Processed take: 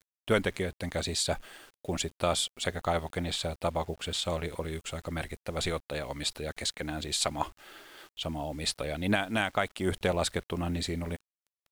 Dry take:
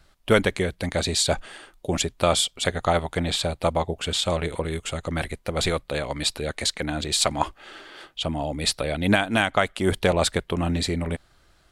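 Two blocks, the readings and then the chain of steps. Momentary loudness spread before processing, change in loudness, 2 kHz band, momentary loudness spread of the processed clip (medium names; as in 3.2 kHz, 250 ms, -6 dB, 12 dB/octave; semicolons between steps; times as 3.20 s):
9 LU, -7.5 dB, -7.5 dB, 9 LU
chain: word length cut 8-bit, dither none; wow and flutter 27 cents; trim -7.5 dB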